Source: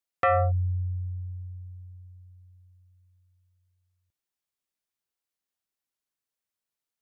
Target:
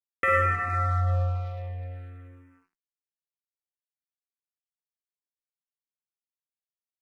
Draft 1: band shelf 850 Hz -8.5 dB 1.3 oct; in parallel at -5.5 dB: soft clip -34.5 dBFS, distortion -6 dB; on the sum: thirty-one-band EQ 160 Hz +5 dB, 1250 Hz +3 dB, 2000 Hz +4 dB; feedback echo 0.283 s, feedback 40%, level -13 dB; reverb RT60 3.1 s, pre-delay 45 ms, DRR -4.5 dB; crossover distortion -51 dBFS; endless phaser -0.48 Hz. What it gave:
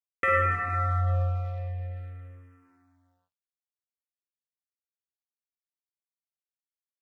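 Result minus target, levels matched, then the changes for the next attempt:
soft clip: distortion +7 dB; crossover distortion: distortion -6 dB
change: soft clip -26 dBFS, distortion -13 dB; change: crossover distortion -43 dBFS

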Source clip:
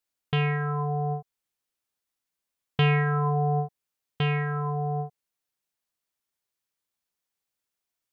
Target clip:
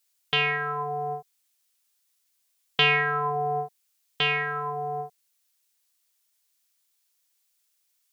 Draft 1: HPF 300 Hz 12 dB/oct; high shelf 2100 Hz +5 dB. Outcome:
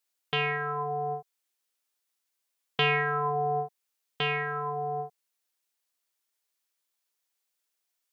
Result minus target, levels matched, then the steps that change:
4000 Hz band -3.0 dB
change: high shelf 2100 Hz +15 dB

